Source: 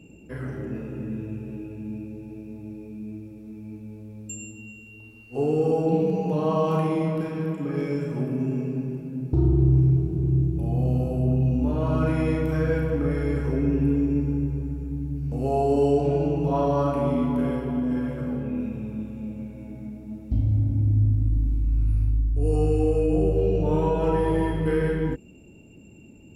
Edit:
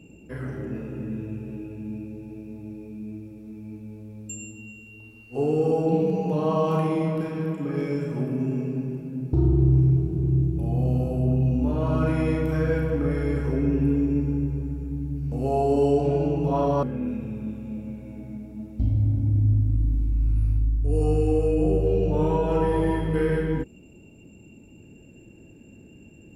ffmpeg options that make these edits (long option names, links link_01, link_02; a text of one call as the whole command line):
ffmpeg -i in.wav -filter_complex "[0:a]asplit=2[link_01][link_02];[link_01]atrim=end=16.832[link_03];[link_02]atrim=start=18.348[link_04];[link_03][link_04]acrossfade=duration=0.004:curve1=hsin:curve2=hsin" out.wav